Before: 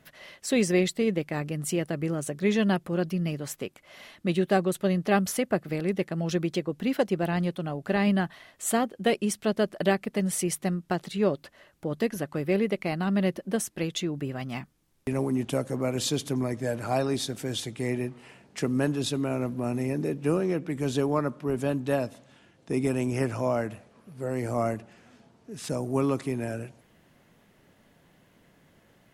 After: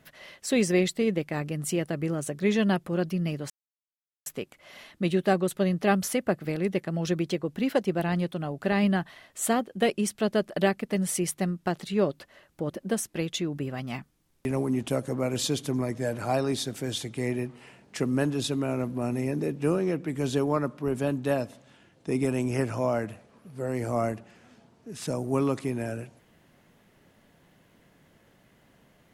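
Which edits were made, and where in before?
3.5 insert silence 0.76 s
11.94–13.32 cut

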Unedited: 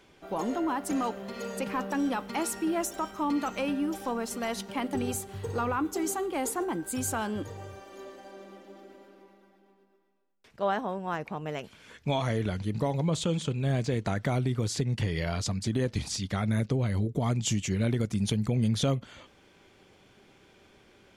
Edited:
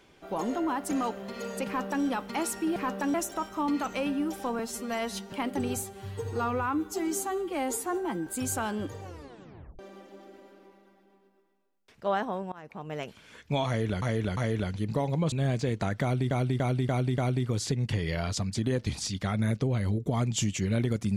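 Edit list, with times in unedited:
1.67–2.05 copy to 2.76
4.21–4.7 stretch 1.5×
5.2–6.83 stretch 1.5×
7.59 tape stop 0.76 s
11.08–11.57 fade in linear, from -23 dB
12.23–12.58 loop, 3 plays
13.18–13.57 cut
14.27–14.56 loop, 5 plays

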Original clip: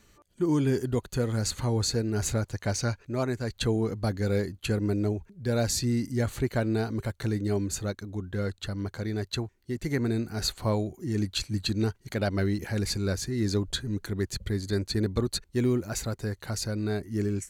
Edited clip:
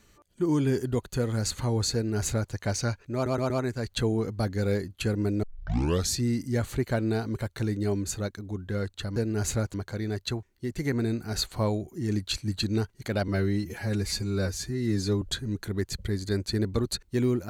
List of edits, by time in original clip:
1.94–2.52 copy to 8.8
3.14 stutter 0.12 s, 4 plays
5.07 tape start 0.68 s
12.34–13.63 stretch 1.5×

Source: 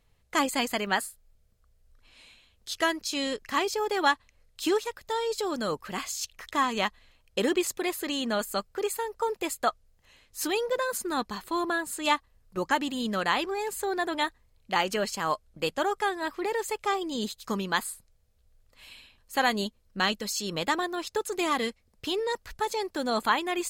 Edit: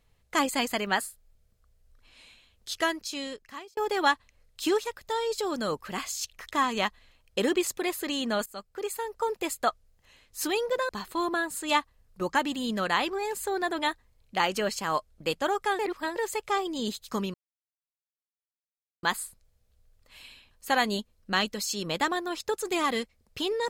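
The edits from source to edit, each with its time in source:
2.74–3.77 fade out
8.46–9.42 fade in equal-power, from -16.5 dB
10.89–11.25 cut
16.15–16.52 reverse
17.7 insert silence 1.69 s

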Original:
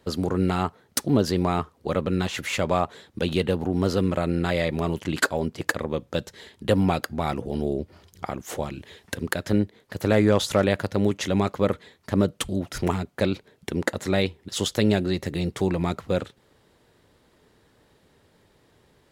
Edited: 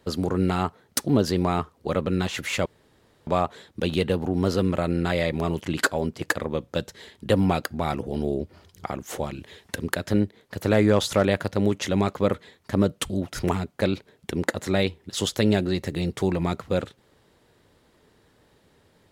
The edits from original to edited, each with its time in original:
2.66 insert room tone 0.61 s

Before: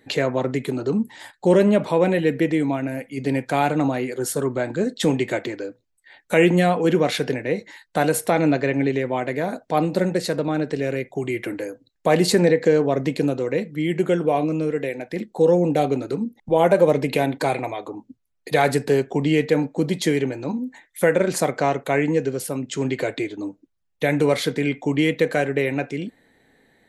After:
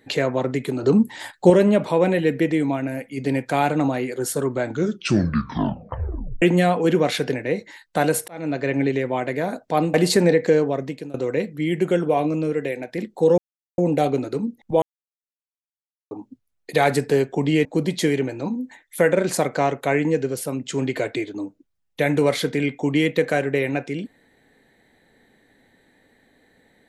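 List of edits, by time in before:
0.83–1.5 gain +5.5 dB
4.62 tape stop 1.80 s
8.28–8.75 fade in
9.94–12.12 cut
12.71–13.32 fade out, to -20.5 dB
15.56 insert silence 0.40 s
16.6–17.89 mute
19.43–19.68 cut

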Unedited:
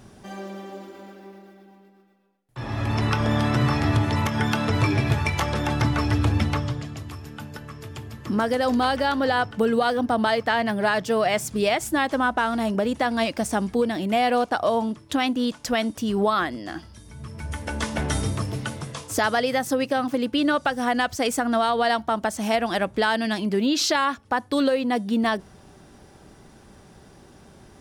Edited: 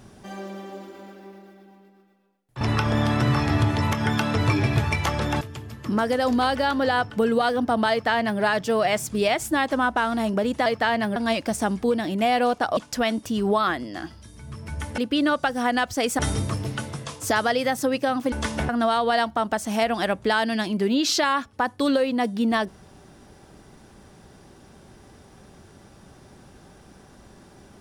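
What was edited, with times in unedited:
2.61–2.95 cut
5.75–7.82 cut
10.32–10.82 copy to 13.07
14.68–15.49 cut
17.7–18.07 swap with 20.2–21.41

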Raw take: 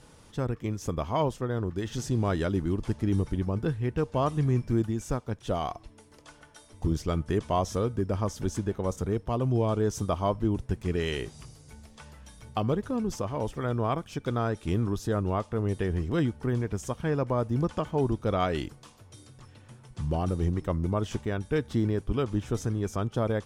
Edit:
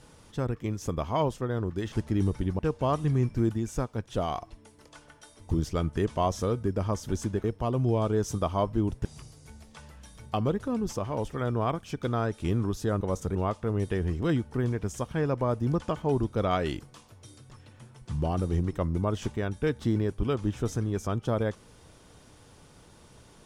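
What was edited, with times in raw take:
1.92–2.84 cut
3.51–3.92 cut
8.77–9.11 move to 15.24
10.72–11.28 cut

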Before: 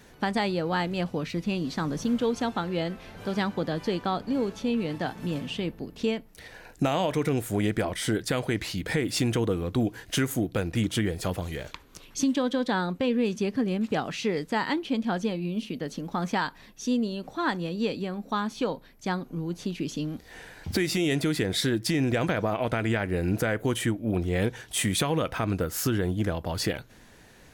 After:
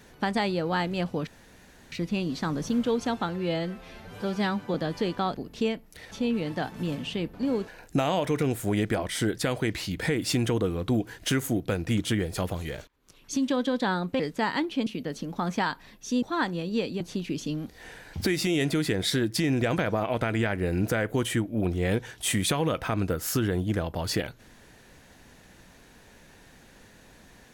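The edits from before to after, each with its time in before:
1.27 insert room tone 0.65 s
2.64–3.61 stretch 1.5×
4.21–4.55 swap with 5.77–6.54
11.74–12.4 fade in
13.06–14.33 cut
15–15.62 cut
16.98–17.29 cut
18.07–19.51 cut

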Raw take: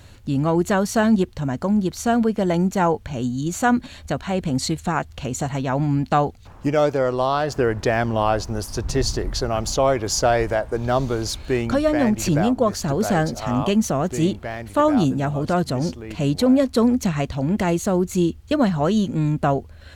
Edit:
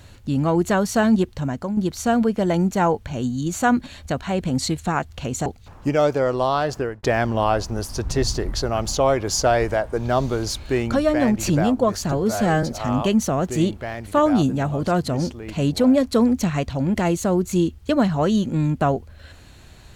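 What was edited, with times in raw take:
1.43–1.77 fade out, to -8 dB
5.46–6.25 cut
7.46–7.82 fade out
12.91–13.25 stretch 1.5×

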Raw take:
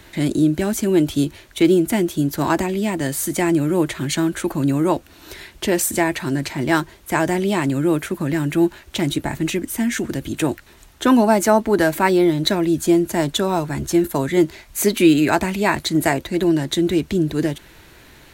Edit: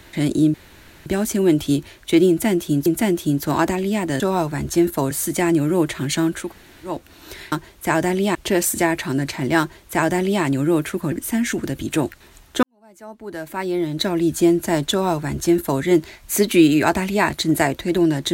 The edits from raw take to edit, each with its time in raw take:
0.54 insert room tone 0.52 s
1.77–2.34 loop, 2 plays
4.45–4.94 room tone, crossfade 0.24 s
6.77–7.6 copy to 5.52
8.29–9.58 cut
11.09–12.76 fade in quadratic
13.37–14.28 copy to 3.11

